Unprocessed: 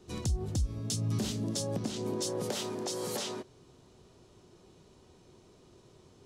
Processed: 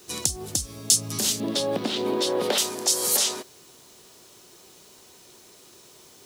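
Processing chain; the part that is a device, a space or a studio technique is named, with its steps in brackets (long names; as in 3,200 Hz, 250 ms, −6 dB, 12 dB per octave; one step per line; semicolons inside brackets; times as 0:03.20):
0:01.40–0:02.58: drawn EQ curve 140 Hz 0 dB, 260 Hz +7 dB, 3,700 Hz +4 dB, 6,500 Hz −16 dB
turntable without a phono preamp (RIAA equalisation recording; white noise bed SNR 29 dB)
level +7 dB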